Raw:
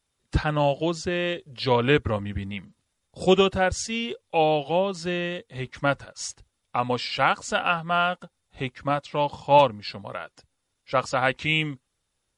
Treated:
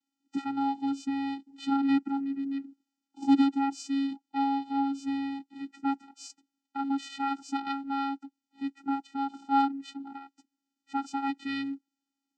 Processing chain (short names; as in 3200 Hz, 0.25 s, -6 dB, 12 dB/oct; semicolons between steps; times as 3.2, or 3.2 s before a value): tone controls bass +2 dB, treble +7 dB; vocoder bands 8, square 275 Hz; gain -5.5 dB